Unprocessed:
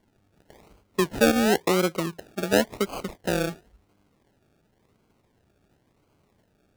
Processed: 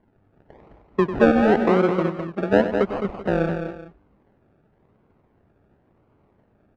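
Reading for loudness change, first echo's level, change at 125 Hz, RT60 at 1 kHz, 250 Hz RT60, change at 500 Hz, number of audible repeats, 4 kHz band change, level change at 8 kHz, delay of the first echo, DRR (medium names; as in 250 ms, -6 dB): +4.0 dB, -11.0 dB, +5.5 dB, no reverb, no reverb, +5.0 dB, 3, -9.0 dB, under -20 dB, 97 ms, no reverb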